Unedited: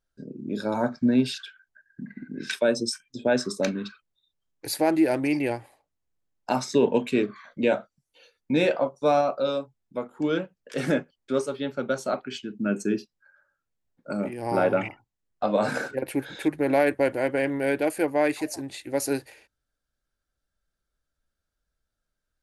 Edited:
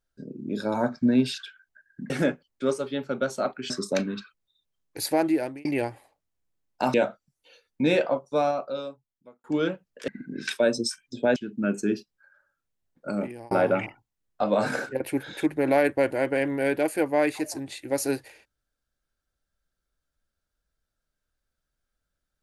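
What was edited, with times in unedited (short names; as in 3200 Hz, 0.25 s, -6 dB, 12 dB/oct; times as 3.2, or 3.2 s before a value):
2.1–3.38 swap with 10.78–12.38
4.7–5.33 fade out equal-power
6.62–7.64 cut
8.72–10.14 fade out
14.25–14.53 fade out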